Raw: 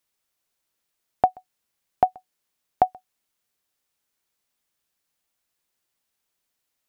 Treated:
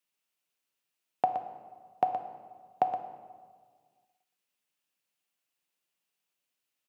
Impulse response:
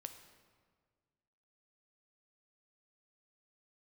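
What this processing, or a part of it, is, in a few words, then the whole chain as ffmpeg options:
PA in a hall: -filter_complex "[0:a]highpass=frequency=120:width=0.5412,highpass=frequency=120:width=1.3066,equalizer=frequency=2700:width_type=o:width=0.43:gain=7,aecho=1:1:120:0.355[link_01];[1:a]atrim=start_sample=2205[link_02];[link_01][link_02]afir=irnorm=-1:irlink=0,volume=-2.5dB"

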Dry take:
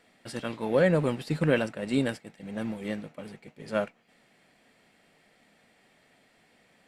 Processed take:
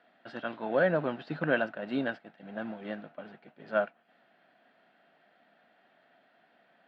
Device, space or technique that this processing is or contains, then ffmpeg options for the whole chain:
kitchen radio: -af "highpass=210,equalizer=frequency=460:width_type=q:width=4:gain=-5,equalizer=frequency=680:width_type=q:width=4:gain=9,equalizer=frequency=1500:width_type=q:width=4:gain=9,equalizer=frequency=2200:width_type=q:width=4:gain=-7,lowpass=frequency=3600:width=0.5412,lowpass=frequency=3600:width=1.3066,volume=-3.5dB"

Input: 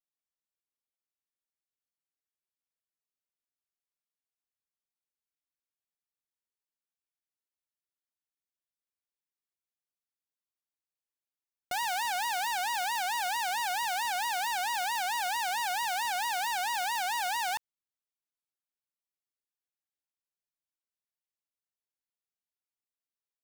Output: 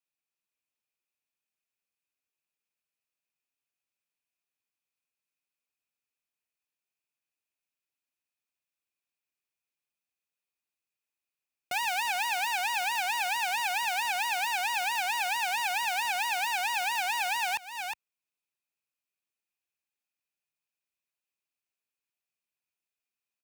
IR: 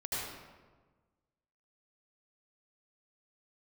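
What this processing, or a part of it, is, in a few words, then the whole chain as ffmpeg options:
ducked delay: -filter_complex "[0:a]highpass=73,equalizer=frequency=2500:width=6.9:gain=14,asplit=3[link_01][link_02][link_03];[link_02]adelay=362,volume=-5dB[link_04];[link_03]apad=whole_len=1049243[link_05];[link_04][link_05]sidechaincompress=threshold=-45dB:ratio=12:attack=34:release=209[link_06];[link_01][link_06]amix=inputs=2:normalize=0"

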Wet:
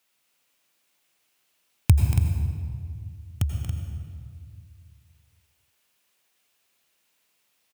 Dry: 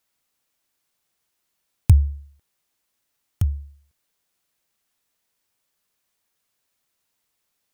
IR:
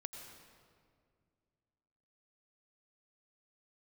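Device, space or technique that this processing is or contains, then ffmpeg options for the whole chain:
stadium PA: -filter_complex "[0:a]highpass=frequency=160:poles=1,equalizer=frequency=2700:width_type=o:width=0.69:gain=5.5,aecho=1:1:233.2|279.9:0.316|0.355[link_01];[1:a]atrim=start_sample=2205[link_02];[link_01][link_02]afir=irnorm=-1:irlink=0,volume=7dB"

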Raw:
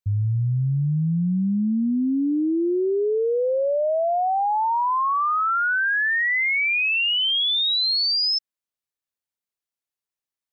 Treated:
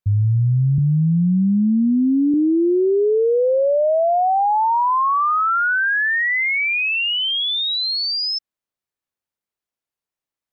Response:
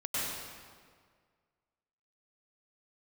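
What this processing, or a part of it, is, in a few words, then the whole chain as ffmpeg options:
behind a face mask: -filter_complex "[0:a]asettb=1/sr,asplit=3[link_01][link_02][link_03];[link_01]atrim=end=0.784[link_04];[link_02]atrim=start=0.78:end=2.34,asetpts=PTS-STARTPTS,afade=type=in:duration=0.004:curve=qsin,afade=type=out:start_time=1.556:duration=0.004:curve=qsin,highpass=frequency=89:width=0.5412,highpass=frequency=89:width=1.3066[link_05];[link_03]atrim=start=2.336[link_06];[link_04][link_05]acrossfade=duration=0.004:curve1=hsin:curve2=qsin[link_07];[link_07][link_06]acrossfade=duration=0.004:curve1=qsin:curve2=hsin,highshelf=frequency=2300:gain=-7.5,volume=5.5dB"

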